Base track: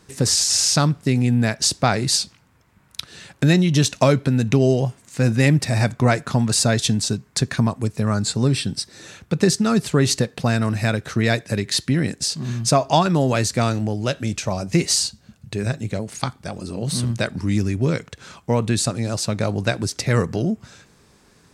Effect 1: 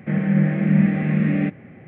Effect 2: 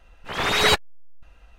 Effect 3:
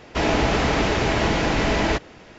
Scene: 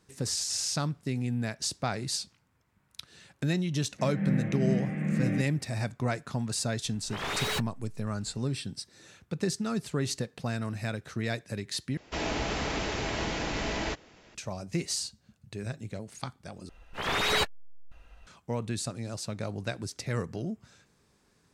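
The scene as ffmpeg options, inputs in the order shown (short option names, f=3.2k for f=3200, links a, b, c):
-filter_complex "[2:a]asplit=2[a][b];[0:a]volume=-13dB[c];[1:a]dynaudnorm=f=110:g=5:m=11.5dB[d];[a]asoftclip=type=tanh:threshold=-23.5dB[e];[3:a]highshelf=f=3.7k:g=8[f];[b]acompressor=threshold=-25dB:ratio=2:attack=2:release=29:knee=1:detection=peak[g];[c]asplit=3[h][i][j];[h]atrim=end=11.974[k];[f]atrim=end=2.38,asetpts=PTS-STARTPTS,volume=-12dB[l];[i]atrim=start=14.346:end=16.694[m];[g]atrim=end=1.58,asetpts=PTS-STARTPTS,volume=-2.5dB[n];[j]atrim=start=18.266[o];[d]atrim=end=1.87,asetpts=PTS-STARTPTS,volume=-16.5dB,afade=t=in:d=0.004:c=hsin,afade=t=out:st=1.866:d=0.004:c=hsin,adelay=3920[p];[e]atrim=end=1.58,asetpts=PTS-STARTPTS,volume=-5.5dB,afade=t=in:d=0.004:c=hsin,afade=t=out:st=1.576:d=0.004:c=hsin,adelay=6840[q];[k][l]acrossfade=d=0.004:c1=hsin:c2=hsin[r];[r][m]acrossfade=d=0.004:c1=hsin:c2=hsin[s];[s][n]acrossfade=d=0.004:c1=hsin:c2=hsin[t];[t][o]acrossfade=d=0.004:c1=hsin:c2=hsin[u];[u][p][q]amix=inputs=3:normalize=0"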